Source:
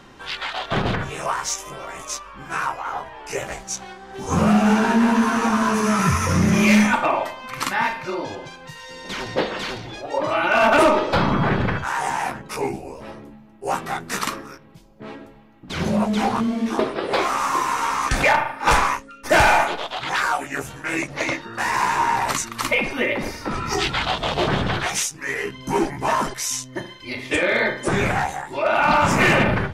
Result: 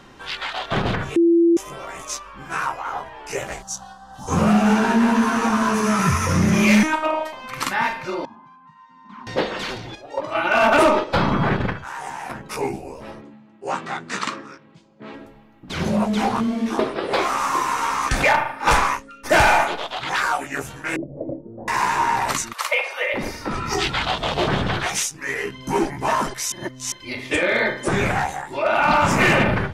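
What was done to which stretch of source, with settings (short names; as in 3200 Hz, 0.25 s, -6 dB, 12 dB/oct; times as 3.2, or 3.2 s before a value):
1.16–1.57 bleep 338 Hz -11.5 dBFS
3.62–4.28 fixed phaser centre 930 Hz, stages 4
6.83–7.33 robotiser 313 Hz
8.25–9.27 double band-pass 480 Hz, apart 2.2 oct
9.95–12.3 gate -22 dBFS, range -8 dB
13.21–15.14 speaker cabinet 150–7200 Hz, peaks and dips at 430 Hz -3 dB, 740 Hz -4 dB, 5600 Hz -5 dB
17.83–18.53 short-mantissa float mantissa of 6-bit
20.96–21.68 Chebyshev low-pass 600 Hz, order 4
22.53–23.14 elliptic high-pass 510 Hz, stop band 60 dB
26.52–26.92 reverse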